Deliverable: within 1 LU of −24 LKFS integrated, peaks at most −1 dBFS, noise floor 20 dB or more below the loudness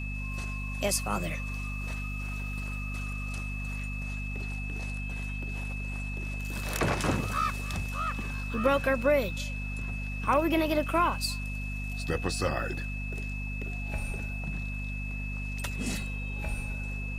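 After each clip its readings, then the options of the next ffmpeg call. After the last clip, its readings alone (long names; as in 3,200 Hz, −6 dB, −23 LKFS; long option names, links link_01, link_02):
mains hum 50 Hz; hum harmonics up to 250 Hz; level of the hum −33 dBFS; interfering tone 2,600 Hz; level of the tone −39 dBFS; integrated loudness −32.0 LKFS; sample peak −12.0 dBFS; target loudness −24.0 LKFS
→ -af "bandreject=frequency=50:width_type=h:width=6,bandreject=frequency=100:width_type=h:width=6,bandreject=frequency=150:width_type=h:width=6,bandreject=frequency=200:width_type=h:width=6,bandreject=frequency=250:width_type=h:width=6"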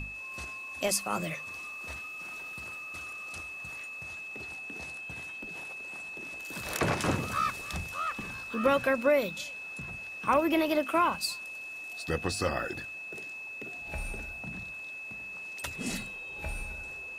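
mains hum none found; interfering tone 2,600 Hz; level of the tone −39 dBFS
→ -af "bandreject=frequency=2600:width=30"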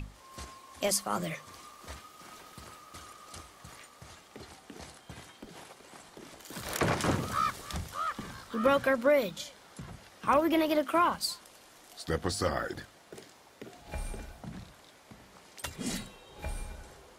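interfering tone none found; integrated loudness −31.5 LKFS; sample peak −12.0 dBFS; target loudness −24.0 LKFS
→ -af "volume=7.5dB"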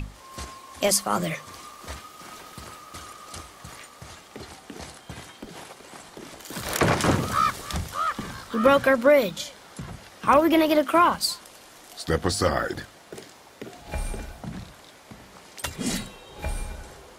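integrated loudness −24.0 LKFS; sample peak −4.5 dBFS; background noise floor −49 dBFS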